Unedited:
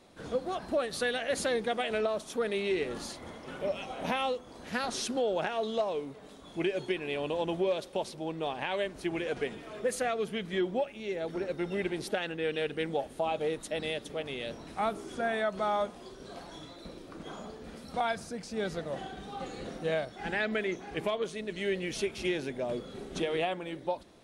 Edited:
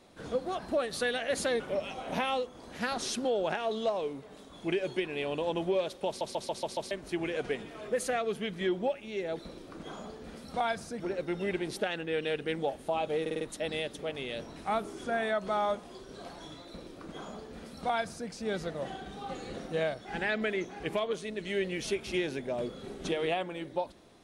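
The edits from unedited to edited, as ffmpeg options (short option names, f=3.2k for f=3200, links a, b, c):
-filter_complex "[0:a]asplit=14[a][b][c][d][e][f][g][h][i][j][k][l][m][n];[a]atrim=end=1.602[o];[b]atrim=start=3.518:end=8.132[p];[c]atrim=start=7.988:end=8.132[q];[d]atrim=start=7.988:end=8.132[r];[e]atrim=start=7.988:end=8.132[s];[f]atrim=start=7.988:end=8.132[t];[g]atrim=start=7.988:end=8.132[u];[h]atrim=start=8.828:end=11.312[v];[i]atrim=start=16.788:end=18.402[w];[j]atrim=start=11.308:end=13.572[x];[k]atrim=start=13.518:end=13.572[y];[l]atrim=start=13.518:end=13.572[z];[m]atrim=start=13.518:end=13.572[aa];[n]atrim=start=13.518[ab];[o][p]acrossfade=d=0.004:c1=hsin:c2=hsin[ac];[ac][q]acrossfade=d=0.004:c1=hsin:c2=hsin[ad];[ad][r]acrossfade=d=0.004:c1=hsin:c2=hsin[ae];[ae][s]acrossfade=d=0.004:c1=hsin:c2=hsin[af];[af][t]acrossfade=d=0.004:c1=hsin:c2=hsin[ag];[ag][u]acrossfade=d=0.004:c1=hsin:c2=hsin[ah];[ah][v]acrossfade=d=0.004:c1=hsin:c2=hsin[ai];[ai][w]acrossfade=d=0.004:c1=hsin:c2=hsin[aj];[aj][x]acrossfade=d=0.004:c1=hsin:c2=hsin[ak];[ak][y]acrossfade=d=0.004:c1=hsin:c2=hsin[al];[al][z]acrossfade=d=0.004:c1=hsin:c2=hsin[am];[am][aa]acrossfade=d=0.004:c1=hsin:c2=hsin[an];[an][ab]acrossfade=d=0.004:c1=hsin:c2=hsin"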